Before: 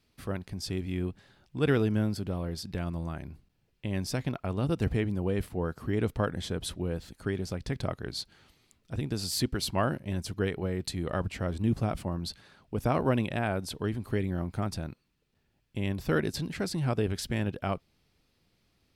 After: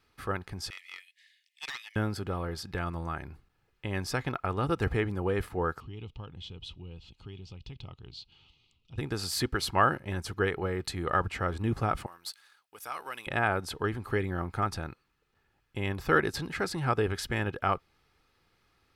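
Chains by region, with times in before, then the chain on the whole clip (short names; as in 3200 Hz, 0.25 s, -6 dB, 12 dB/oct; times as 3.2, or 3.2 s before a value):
0.7–1.96 Chebyshev high-pass 1800 Hz, order 8 + Doppler distortion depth 0.52 ms
5.8–8.98 EQ curve 150 Hz 0 dB, 280 Hz -7 dB, 620 Hz -15 dB, 940 Hz -10 dB, 1700 Hz -26 dB, 2800 Hz +6 dB, 7300 Hz -12 dB, 11000 Hz -27 dB + compressor 1.5:1, threshold -51 dBFS
12.06–13.27 differentiator + sample leveller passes 1
whole clip: bell 1300 Hz +11.5 dB 1.5 oct; comb 2.4 ms, depth 34%; gain -2 dB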